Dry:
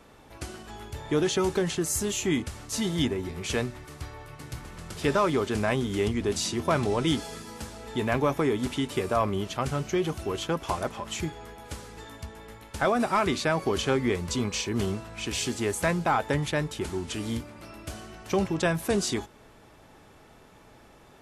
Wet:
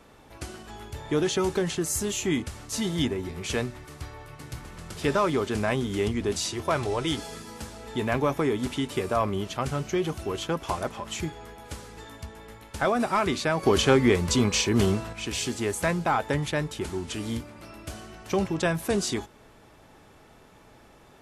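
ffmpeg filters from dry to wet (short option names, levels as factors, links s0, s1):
-filter_complex "[0:a]asettb=1/sr,asplit=3[s0][s1][s2];[s0]atrim=end=6.364[s3];[s1]atrim=start=6.36:end=7.18,asetpts=PTS-STARTPTS,afade=t=in:d=0.004:c=qsin,afade=t=out:st=0.816:d=0.004:c=qsin,equalizer=f=210:t=o:w=0.77:g=-10[s4];[s2]atrim=start=7.176[s5];[s3][s4]acrossfade=d=0.004:c1=hsin:c2=qsin[s6];[s6][s5]acrossfade=d=0.004:c1=qsin:c2=hsin,asettb=1/sr,asplit=3[s7][s8][s9];[s7]atrim=end=13.634[s10];[s8]atrim=start=13.63:end=15.13,asetpts=PTS-STARTPTS,afade=t=in:d=0.004:c=qsin,afade=t=out:st=1.496:d=0.004:c=qsin,acontrast=50[s11];[s9]atrim=start=15.126[s12];[s10][s11]acrossfade=d=0.004:c1=hsin:c2=qsin[s13];[s13][s12]acrossfade=d=0.004:c1=qsin:c2=hsin"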